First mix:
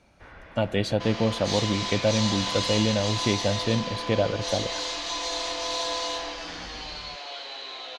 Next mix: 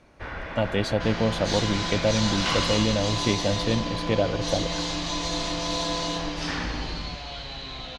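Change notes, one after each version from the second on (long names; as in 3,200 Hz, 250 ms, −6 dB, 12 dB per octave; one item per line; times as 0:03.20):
first sound +12.0 dB
second sound: remove inverse Chebyshev high-pass filter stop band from 180 Hz, stop band 40 dB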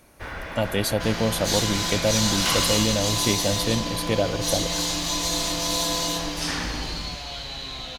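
master: remove high-frequency loss of the air 130 metres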